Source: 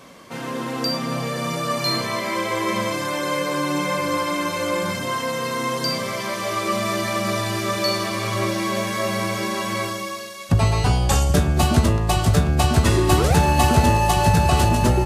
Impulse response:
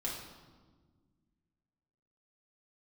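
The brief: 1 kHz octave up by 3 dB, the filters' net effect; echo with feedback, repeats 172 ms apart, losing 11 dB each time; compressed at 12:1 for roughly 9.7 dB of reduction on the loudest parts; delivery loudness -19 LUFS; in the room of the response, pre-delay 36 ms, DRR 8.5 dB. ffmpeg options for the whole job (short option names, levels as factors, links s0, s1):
-filter_complex "[0:a]equalizer=f=1000:t=o:g=3.5,acompressor=threshold=0.1:ratio=12,aecho=1:1:172|344|516:0.282|0.0789|0.0221,asplit=2[s0][s1];[1:a]atrim=start_sample=2205,adelay=36[s2];[s1][s2]afir=irnorm=-1:irlink=0,volume=0.299[s3];[s0][s3]amix=inputs=2:normalize=0,volume=1.68"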